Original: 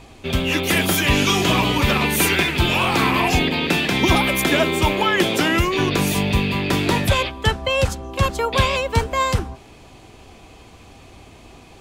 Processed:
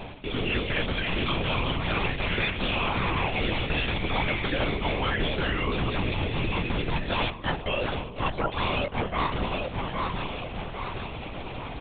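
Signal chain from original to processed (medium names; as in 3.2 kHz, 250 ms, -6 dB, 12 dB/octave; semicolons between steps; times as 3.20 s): feedback delay 807 ms, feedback 47%, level -18 dB; reverse; compression 12:1, threshold -32 dBFS, peak gain reduction 21.5 dB; reverse; high-pass 110 Hz; LPC vocoder at 8 kHz whisper; trim +9 dB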